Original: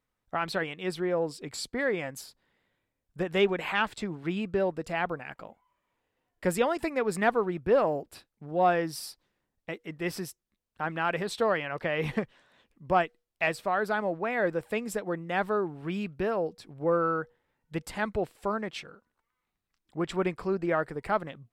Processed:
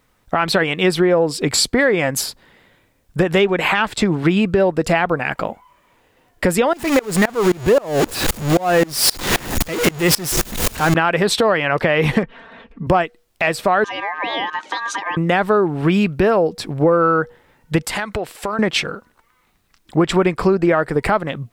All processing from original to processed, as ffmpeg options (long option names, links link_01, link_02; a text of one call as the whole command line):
ffmpeg -i in.wav -filter_complex "[0:a]asettb=1/sr,asplit=3[link_01][link_02][link_03];[link_01]atrim=end=6.734[link_04];[link_02]atrim=start=6.73:end=10.95,asetpts=PTS-STARTPTS,afade=type=in:duration=0.004:curve=qsin,afade=type=out:start_time=4.216:duration=0.004:curve=qsin,aeval=exprs='val(0)+0.5*0.0422*sgn(val(0))':channel_layout=same,aeval=exprs='val(0)+0.00224*sin(2*PI*6800*n/s)':channel_layout=same,aeval=exprs='val(0)*pow(10,-27*if(lt(mod(-3.8*n/s,1),2*abs(-3.8)/1000),1-mod(-3.8*n/s,1)/(2*abs(-3.8)/1000),(mod(-3.8*n/s,1)-2*abs(-3.8)/1000)/(1-2*abs(-3.8)/1000))/20)':channel_layout=same[link_05];[link_03]atrim=start=10.946[link_06];[link_04][link_05]acrossfade=duration=0.004:curve1=hsin:curve2=qsin[link_07];[link_07][link_06]acrossfade=duration=0.004:curve1=qsin:curve2=hsin,asettb=1/sr,asplit=3[link_08][link_09][link_10];[link_08]atrim=end=12.234[link_11];[link_09]atrim=start=12.23:end=12.87,asetpts=PTS-STARTPTS,afade=type=in:duration=0.004:curve=qsin,afade=type=out:start_time=0.636:duration=0.004:curve=qsin,lowpass=2200,aecho=1:1:4.4:0.89,atrim=end_sample=28224[link_12];[link_10]atrim=start=12.866[link_13];[link_11][link_12]acrossfade=duration=0.004:curve1=hsin:curve2=qsin[link_14];[link_14][link_13]acrossfade=duration=0.004:curve1=qsin:curve2=hsin,asettb=1/sr,asplit=3[link_15][link_16][link_17];[link_15]atrim=end=13.844[link_18];[link_16]atrim=start=13.84:end=15.17,asetpts=PTS-STARTPTS,afade=type=in:duration=0.004:curve=qsin,afade=type=out:start_time=1.326:duration=0.004:curve=qsin,acompressor=threshold=-36dB:ratio=12:attack=3.2:release=140:knee=1:detection=peak,aeval=exprs='val(0)*sin(2*PI*1400*n/s)':channel_layout=same,highpass=310,equalizer=frequency=310:width_type=q:width=4:gain=8,equalizer=frequency=1200:width_type=q:width=4:gain=-3,equalizer=frequency=1900:width_type=q:width=4:gain=-6,lowpass=frequency=6600:width=0.5412,lowpass=frequency=6600:width=1.3066[link_19];[link_17]atrim=start=15.166[link_20];[link_18][link_19]acrossfade=duration=0.004:curve1=hsin:curve2=qsin[link_21];[link_21][link_20]acrossfade=duration=0.004:curve1=qsin:curve2=hsin,asettb=1/sr,asplit=3[link_22][link_23][link_24];[link_22]atrim=end=17.854[link_25];[link_23]atrim=start=17.85:end=18.59,asetpts=PTS-STARTPTS,afade=type=in:duration=0.004:curve=qsin,afade=type=out:start_time=0.736:duration=0.004:curve=qsin,lowshelf=frequency=500:gain=-10,acompressor=threshold=-40dB:ratio=16:attack=3.2:release=140:knee=1:detection=peak[link_26];[link_24]atrim=start=18.586[link_27];[link_25][link_26]acrossfade=duration=0.004:curve1=hsin:curve2=qsin[link_28];[link_28][link_27]acrossfade=duration=0.004:curve1=qsin:curve2=hsin,acompressor=threshold=-34dB:ratio=6,alimiter=level_in=26.5dB:limit=-1dB:release=50:level=0:latency=1,volume=-4.5dB" out.wav